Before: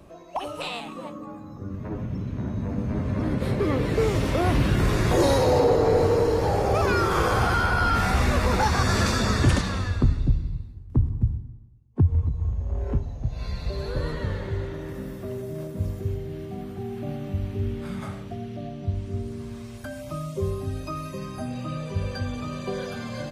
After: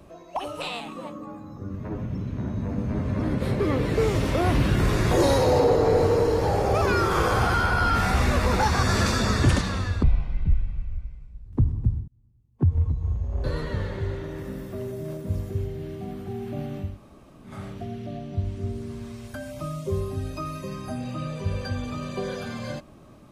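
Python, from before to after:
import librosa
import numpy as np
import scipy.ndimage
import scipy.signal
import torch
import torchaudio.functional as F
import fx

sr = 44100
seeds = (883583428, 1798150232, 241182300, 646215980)

y = fx.edit(x, sr, fx.speed_span(start_s=10.03, length_s=0.8, speed=0.56),
    fx.fade_in_span(start_s=11.45, length_s=0.67),
    fx.cut(start_s=12.81, length_s=1.13),
    fx.room_tone_fill(start_s=17.39, length_s=0.65, crossfade_s=0.24), tone=tone)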